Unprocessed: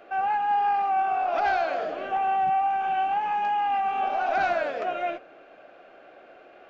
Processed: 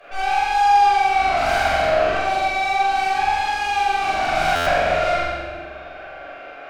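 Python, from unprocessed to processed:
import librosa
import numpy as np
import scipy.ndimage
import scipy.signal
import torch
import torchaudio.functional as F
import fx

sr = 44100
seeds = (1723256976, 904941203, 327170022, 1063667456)

y = fx.highpass(x, sr, hz=930.0, slope=6)
y = fx.tube_stage(y, sr, drive_db=36.0, bias=0.5)
y = fx.room_flutter(y, sr, wall_m=7.6, rt60_s=1.0)
y = fx.room_shoebox(y, sr, seeds[0], volume_m3=1000.0, walls='mixed', distance_m=5.7)
y = fx.buffer_glitch(y, sr, at_s=(4.55,), block=512, repeats=9)
y = y * 10.0 ** (5.0 / 20.0)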